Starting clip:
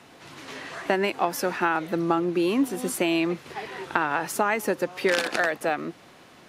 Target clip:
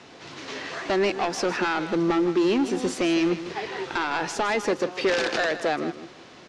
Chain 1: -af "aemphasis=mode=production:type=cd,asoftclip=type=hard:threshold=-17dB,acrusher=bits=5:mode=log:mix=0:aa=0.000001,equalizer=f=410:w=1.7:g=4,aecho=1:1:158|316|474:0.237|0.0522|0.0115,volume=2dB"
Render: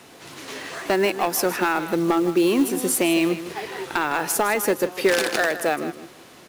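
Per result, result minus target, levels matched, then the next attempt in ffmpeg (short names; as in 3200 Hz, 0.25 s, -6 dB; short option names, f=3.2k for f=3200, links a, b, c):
8000 Hz band +7.5 dB; hard clip: distortion -8 dB
-af "aemphasis=mode=production:type=cd,asoftclip=type=hard:threshold=-17dB,acrusher=bits=5:mode=log:mix=0:aa=0.000001,lowpass=f=6.1k:w=0.5412,lowpass=f=6.1k:w=1.3066,equalizer=f=410:w=1.7:g=4,aecho=1:1:158|316|474:0.237|0.0522|0.0115,volume=2dB"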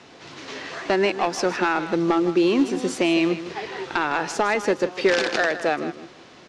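hard clip: distortion -8 dB
-af "aemphasis=mode=production:type=cd,asoftclip=type=hard:threshold=-24dB,acrusher=bits=5:mode=log:mix=0:aa=0.000001,lowpass=f=6.1k:w=0.5412,lowpass=f=6.1k:w=1.3066,equalizer=f=410:w=1.7:g=4,aecho=1:1:158|316|474:0.237|0.0522|0.0115,volume=2dB"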